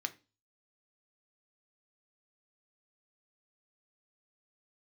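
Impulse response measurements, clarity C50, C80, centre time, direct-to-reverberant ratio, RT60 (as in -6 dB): 18.5 dB, 24.5 dB, 4 ms, 7.5 dB, 0.30 s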